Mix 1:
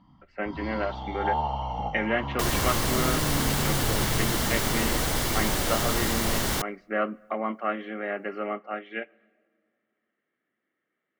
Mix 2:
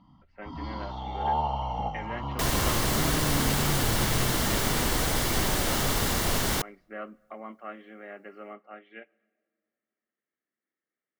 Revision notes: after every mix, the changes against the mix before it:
speech -12.0 dB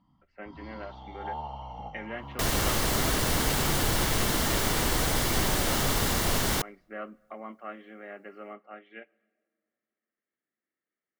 first sound -9.5 dB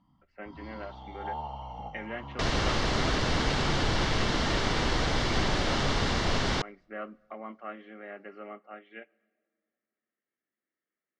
second sound: add low-pass 5.3 kHz 24 dB/octave

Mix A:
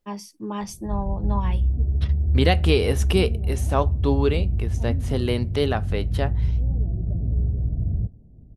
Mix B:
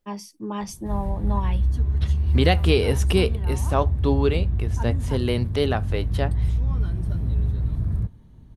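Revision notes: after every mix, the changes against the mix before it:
background: remove steep low-pass 750 Hz 72 dB/octave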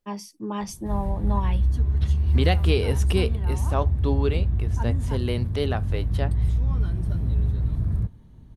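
second voice -4.0 dB

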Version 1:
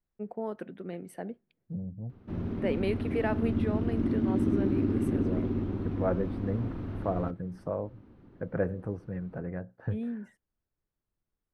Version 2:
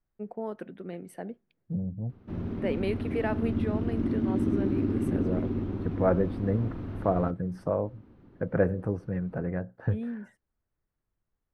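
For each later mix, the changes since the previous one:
second voice +5.0 dB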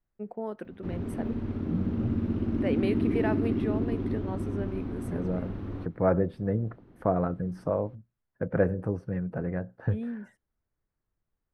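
background: entry -1.45 s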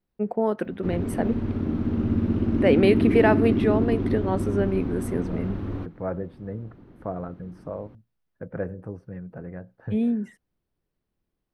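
first voice +11.5 dB; second voice -6.0 dB; background +5.5 dB

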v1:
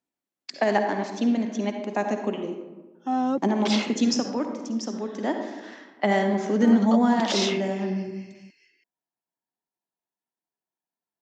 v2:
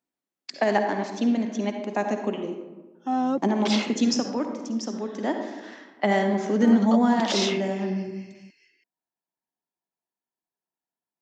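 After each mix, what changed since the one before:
second voice: send on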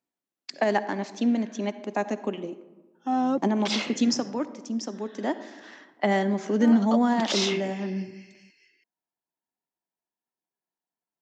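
first voice: send -9.5 dB

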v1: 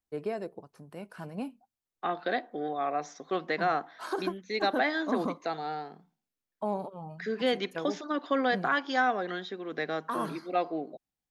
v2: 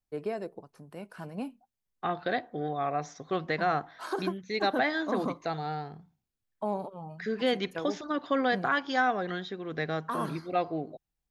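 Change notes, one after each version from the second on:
second voice: remove high-pass 210 Hz 24 dB/octave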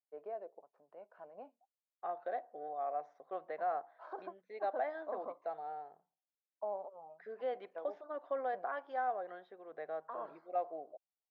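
master: add ladder band-pass 710 Hz, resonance 50%

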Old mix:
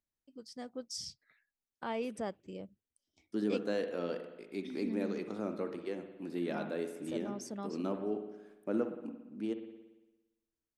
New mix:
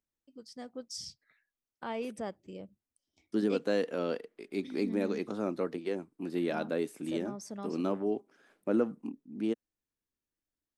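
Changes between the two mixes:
second voice +6.5 dB; reverb: off

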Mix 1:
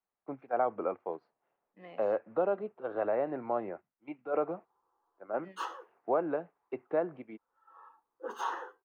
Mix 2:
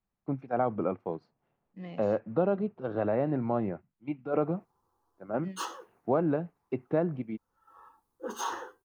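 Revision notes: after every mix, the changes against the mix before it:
master: remove three-band isolator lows -20 dB, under 360 Hz, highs -14 dB, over 2.9 kHz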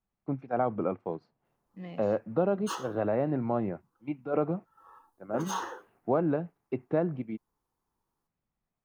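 background: entry -2.90 s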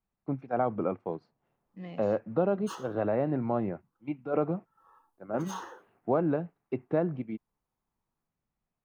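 background -6.0 dB

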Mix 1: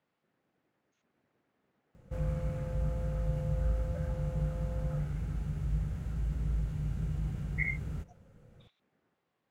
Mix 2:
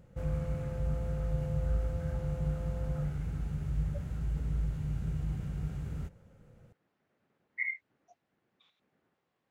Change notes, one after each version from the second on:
background: entry -1.95 s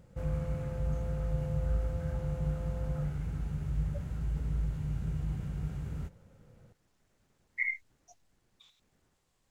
speech: remove band-pass 180–2400 Hz; master: add peaking EQ 970 Hz +2.5 dB 0.25 oct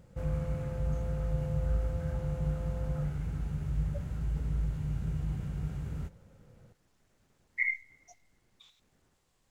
reverb: on, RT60 1.2 s

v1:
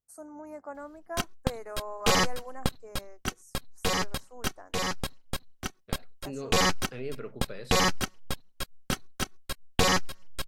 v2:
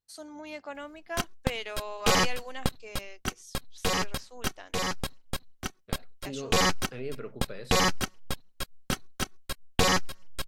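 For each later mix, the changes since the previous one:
first voice: remove Chebyshev band-stop 1.2–8.5 kHz, order 2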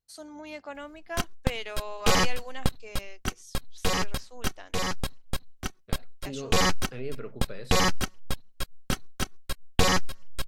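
master: add bass shelf 93 Hz +6.5 dB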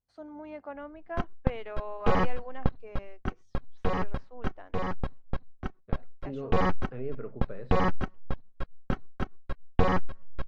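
master: add low-pass 1.3 kHz 12 dB/octave

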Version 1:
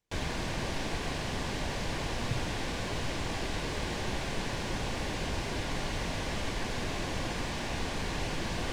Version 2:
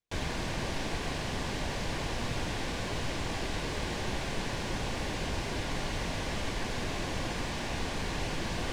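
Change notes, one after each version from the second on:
speech -10.0 dB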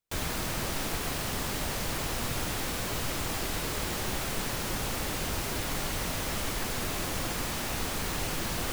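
background: remove distance through air 89 m; master: remove band-stop 1.3 kHz, Q 6.2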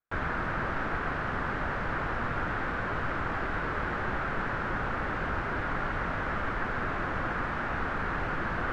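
speech -7.5 dB; master: add resonant low-pass 1.5 kHz, resonance Q 3.1

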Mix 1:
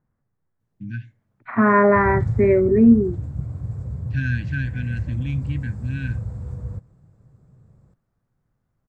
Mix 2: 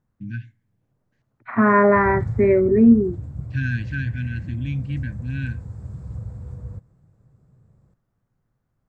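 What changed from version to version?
first voice: entry -0.60 s; background -3.5 dB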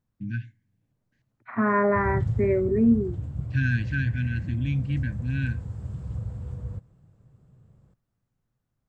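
second voice -7.0 dB; background: add peaking EQ 3 kHz +10 dB 0.47 oct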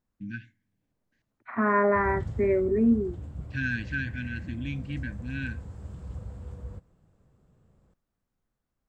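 master: add peaking EQ 120 Hz -12 dB 0.91 oct

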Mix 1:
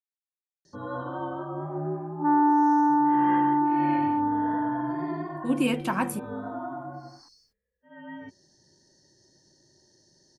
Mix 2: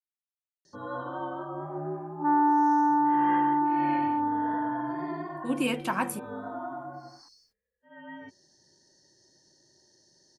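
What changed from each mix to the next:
master: add bass shelf 290 Hz -7.5 dB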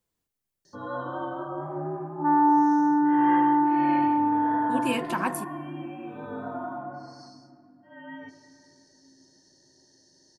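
speech: entry -0.75 s; reverb: on, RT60 2.9 s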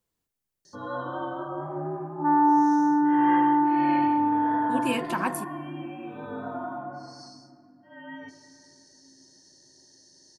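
first sound: add treble shelf 4.9 kHz +9.5 dB

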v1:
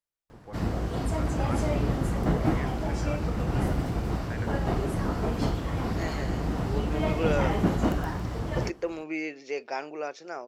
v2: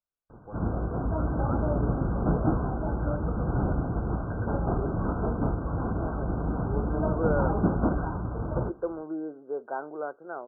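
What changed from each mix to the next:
master: add brick-wall FIR low-pass 1.6 kHz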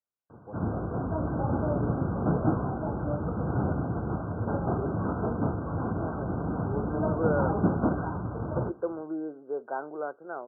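first voice: add low-pass 1 kHz 24 dB/octave; master: add high-pass 78 Hz 24 dB/octave

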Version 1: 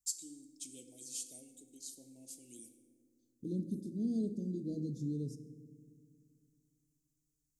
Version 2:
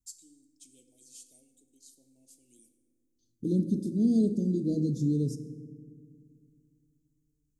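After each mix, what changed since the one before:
first voice -8.0 dB; second voice +10.5 dB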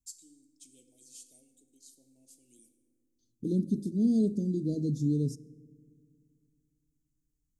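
second voice: send -10.5 dB

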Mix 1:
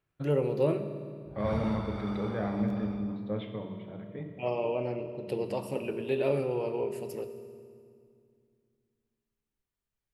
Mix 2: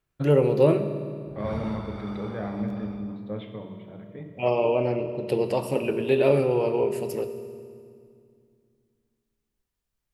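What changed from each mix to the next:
first voice +8.0 dB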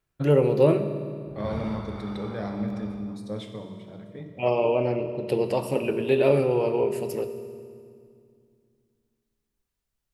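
second voice: remove steep low-pass 3.2 kHz 36 dB/octave

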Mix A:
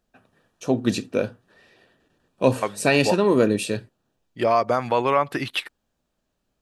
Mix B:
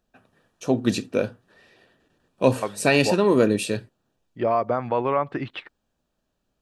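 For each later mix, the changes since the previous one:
second voice: add tape spacing loss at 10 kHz 35 dB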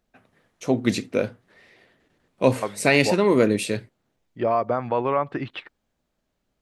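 first voice: remove Butterworth band-stop 2.1 kHz, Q 5.2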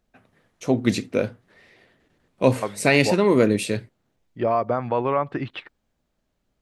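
master: add bass shelf 160 Hz +4 dB

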